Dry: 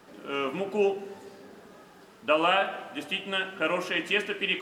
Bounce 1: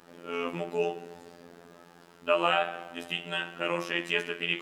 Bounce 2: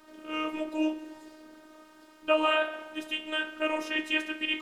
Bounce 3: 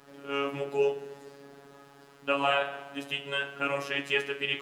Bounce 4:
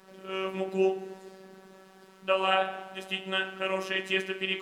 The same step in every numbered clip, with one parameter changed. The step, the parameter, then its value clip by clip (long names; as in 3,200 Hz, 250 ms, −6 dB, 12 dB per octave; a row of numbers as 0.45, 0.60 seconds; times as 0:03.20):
phases set to zero, frequency: 86, 310, 140, 190 Hertz